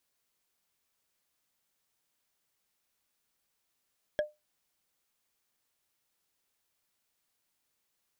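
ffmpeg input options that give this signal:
ffmpeg -f lavfi -i "aevalsrc='0.0794*pow(10,-3*t/0.2)*sin(2*PI*602*t)+0.0355*pow(10,-3*t/0.059)*sin(2*PI*1659.7*t)+0.0158*pow(10,-3*t/0.026)*sin(2*PI*3253.2*t)+0.00708*pow(10,-3*t/0.014)*sin(2*PI*5377.7*t)+0.00316*pow(10,-3*t/0.009)*sin(2*PI*8030.7*t)':duration=0.45:sample_rate=44100" out.wav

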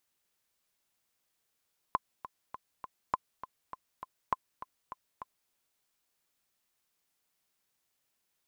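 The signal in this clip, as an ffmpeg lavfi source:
ffmpeg -f lavfi -i "aevalsrc='pow(10,(-14-14*gte(mod(t,4*60/202),60/202))/20)*sin(2*PI*1030*mod(t,60/202))*exp(-6.91*mod(t,60/202)/0.03)':duration=3.56:sample_rate=44100" out.wav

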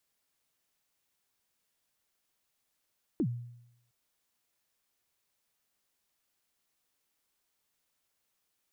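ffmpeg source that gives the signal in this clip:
ffmpeg -f lavfi -i "aevalsrc='0.0631*pow(10,-3*t/0.81)*sin(2*PI*(370*0.07/log(120/370)*(exp(log(120/370)*min(t,0.07)/0.07)-1)+120*max(t-0.07,0)))':duration=0.71:sample_rate=44100" out.wav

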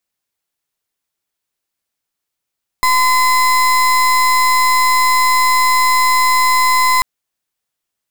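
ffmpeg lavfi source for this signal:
ffmpeg -f lavfi -i "aevalsrc='0.251*(2*lt(mod(1020*t,1),0.33)-1)':duration=4.19:sample_rate=44100" out.wav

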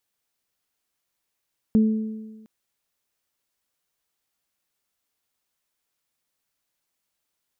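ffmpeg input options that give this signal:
ffmpeg -f lavfi -i "aevalsrc='0.237*pow(10,-3*t/1.27)*sin(2*PI*218*t)+0.0447*pow(10,-3*t/1.28)*sin(2*PI*436*t)':duration=0.71:sample_rate=44100" out.wav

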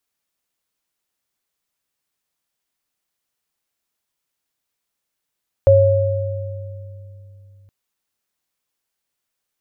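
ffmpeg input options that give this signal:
ffmpeg -f lavfi -i "aevalsrc='0.237*pow(10,-3*t/3.58)*sin(2*PI*98.6*t)+0.447*pow(10,-3*t/1.99)*sin(2*PI*549*t)':duration=2.02:sample_rate=44100" out.wav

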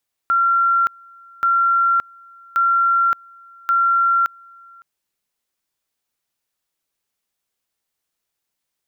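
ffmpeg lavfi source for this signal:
ffmpeg -f lavfi -i "aevalsrc='pow(10,(-13-28.5*gte(mod(t,1.13),0.57))/20)*sin(2*PI*1370*t)':duration=4.52:sample_rate=44100" out.wav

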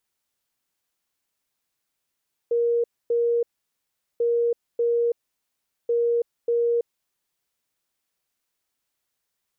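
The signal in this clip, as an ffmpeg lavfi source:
ffmpeg -f lavfi -i "aevalsrc='0.119*sin(2*PI*471*t)*clip(min(mod(mod(t,1.69),0.59),0.33-mod(mod(t,1.69),0.59))/0.005,0,1)*lt(mod(t,1.69),1.18)':duration=5.07:sample_rate=44100" out.wav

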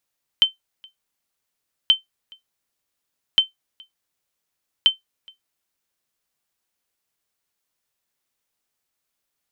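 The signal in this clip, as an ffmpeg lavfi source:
ffmpeg -f lavfi -i "aevalsrc='0.531*(sin(2*PI*3090*mod(t,1.48))*exp(-6.91*mod(t,1.48)/0.14)+0.0335*sin(2*PI*3090*max(mod(t,1.48)-0.42,0))*exp(-6.91*max(mod(t,1.48)-0.42,0)/0.14))':duration=5.92:sample_rate=44100" out.wav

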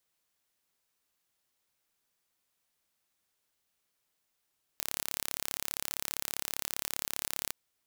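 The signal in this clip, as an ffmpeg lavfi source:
ffmpeg -f lavfi -i "aevalsrc='0.473*eq(mod(n,1256),0)':duration=2.72:sample_rate=44100" out.wav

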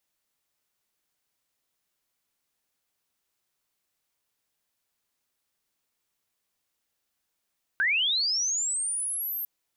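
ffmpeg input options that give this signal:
ffmpeg -f lavfi -i "aevalsrc='pow(10,(-21-8.5*t/1.65)/20)*sin(2*PI*(1500*t+11500*t*t/(2*1.65)))':duration=1.65:sample_rate=44100" out.wav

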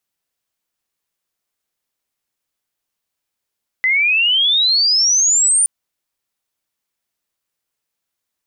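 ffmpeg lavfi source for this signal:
ffmpeg -f lavfi -i "aevalsrc='pow(10,(-12+1.5*t/1.82)/20)*sin(2*PI*2000*1.82/log(9300/2000)*(exp(log(9300/2000)*t/1.82)-1))':duration=1.82:sample_rate=44100" out.wav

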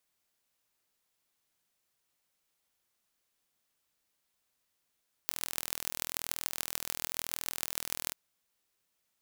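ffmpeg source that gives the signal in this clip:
ffmpeg -f lavfi -i "aevalsrc='0.668*eq(mod(n,1076),0)*(0.5+0.5*eq(mod(n,6456),0))':duration=2.85:sample_rate=44100" out.wav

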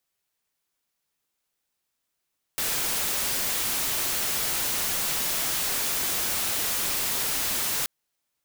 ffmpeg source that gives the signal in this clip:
ffmpeg -f lavfi -i "anoisesrc=color=white:amplitude=0.0774:duration=5.28:sample_rate=44100:seed=1" out.wav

